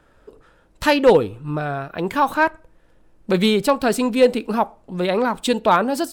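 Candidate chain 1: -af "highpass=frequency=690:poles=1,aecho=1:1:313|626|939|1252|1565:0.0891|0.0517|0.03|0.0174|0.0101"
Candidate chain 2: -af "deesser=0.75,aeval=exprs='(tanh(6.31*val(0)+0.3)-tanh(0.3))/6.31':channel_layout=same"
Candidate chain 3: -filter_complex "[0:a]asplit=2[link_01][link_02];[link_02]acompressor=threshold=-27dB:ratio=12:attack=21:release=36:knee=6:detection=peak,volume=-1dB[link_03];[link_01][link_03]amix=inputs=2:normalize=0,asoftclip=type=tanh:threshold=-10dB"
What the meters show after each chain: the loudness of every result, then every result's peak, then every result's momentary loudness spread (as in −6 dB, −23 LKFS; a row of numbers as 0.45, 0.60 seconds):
−23.0, −24.5, −19.5 LKFS; −3.5, −14.0, −10.0 dBFS; 11, 6, 6 LU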